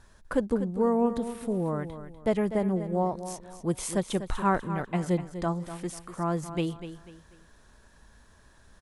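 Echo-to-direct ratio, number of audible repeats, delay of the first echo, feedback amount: −11.0 dB, 3, 246 ms, 33%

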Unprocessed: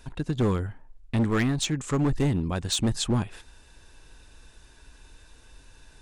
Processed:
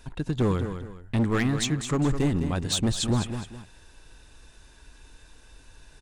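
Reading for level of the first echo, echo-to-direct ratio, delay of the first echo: −9.0 dB, −8.5 dB, 208 ms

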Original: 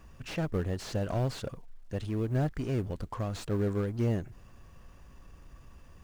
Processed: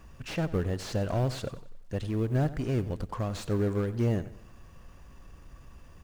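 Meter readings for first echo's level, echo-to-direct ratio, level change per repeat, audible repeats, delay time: −16.0 dB, −15.5 dB, −8.0 dB, 3, 92 ms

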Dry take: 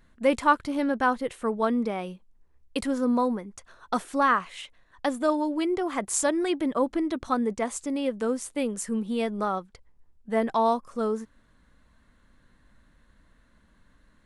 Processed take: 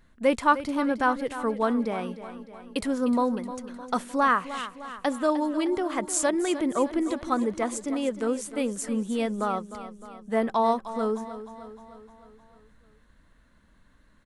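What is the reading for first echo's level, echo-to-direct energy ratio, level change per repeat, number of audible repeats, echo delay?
−13.0 dB, −11.5 dB, −5.0 dB, 5, 306 ms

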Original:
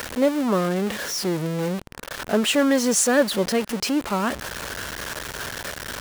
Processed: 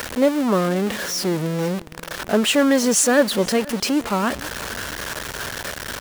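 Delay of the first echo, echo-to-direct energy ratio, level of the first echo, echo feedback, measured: 486 ms, −21.5 dB, −22.0 dB, 36%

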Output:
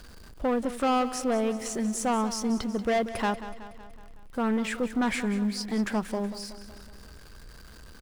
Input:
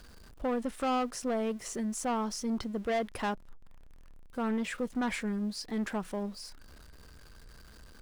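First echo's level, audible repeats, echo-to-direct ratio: −13.5 dB, 5, −12.0 dB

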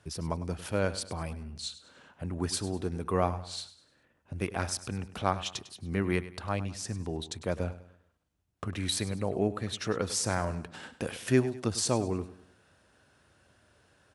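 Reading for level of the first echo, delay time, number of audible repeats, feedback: −15.0 dB, 101 ms, 3, 39%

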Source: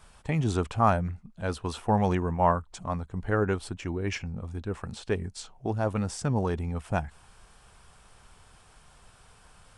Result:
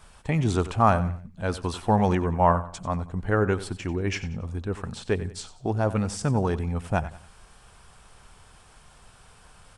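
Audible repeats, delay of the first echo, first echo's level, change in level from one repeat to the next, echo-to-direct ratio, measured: 3, 92 ms, −15.0 dB, −9.5 dB, −14.5 dB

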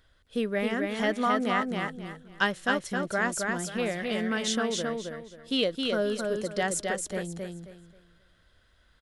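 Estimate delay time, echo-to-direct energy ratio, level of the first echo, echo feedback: 267 ms, −3.0 dB, −3.5 dB, 27%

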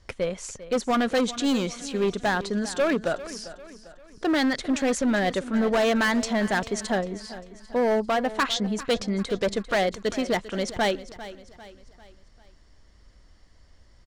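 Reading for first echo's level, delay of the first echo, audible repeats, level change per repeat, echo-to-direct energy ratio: −15.5 dB, 397 ms, 3, −7.0 dB, −14.5 dB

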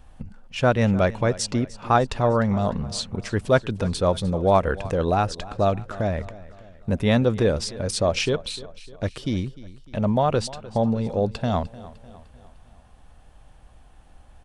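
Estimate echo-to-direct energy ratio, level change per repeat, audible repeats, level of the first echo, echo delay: −17.0 dB, −6.0 dB, 3, −18.5 dB, 302 ms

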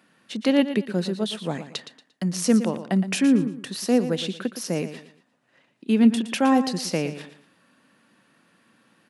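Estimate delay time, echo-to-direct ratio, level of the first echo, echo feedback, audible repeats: 116 ms, −11.0 dB, −11.5 dB, 30%, 3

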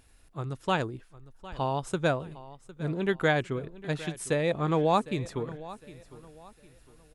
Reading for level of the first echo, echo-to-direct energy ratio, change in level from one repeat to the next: −17.5 dB, −17.0 dB, −9.5 dB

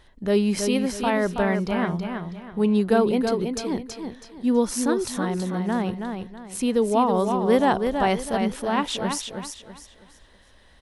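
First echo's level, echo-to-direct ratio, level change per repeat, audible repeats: −6.0 dB, −5.5 dB, −10.0 dB, 3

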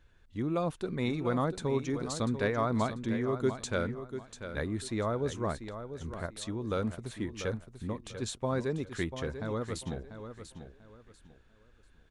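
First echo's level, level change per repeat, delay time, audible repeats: −10.0 dB, −11.5 dB, 692 ms, 3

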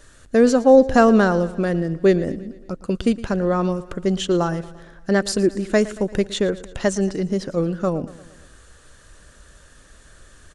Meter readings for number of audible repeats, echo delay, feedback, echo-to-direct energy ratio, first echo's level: 4, 114 ms, 57%, −16.5 dB, −18.0 dB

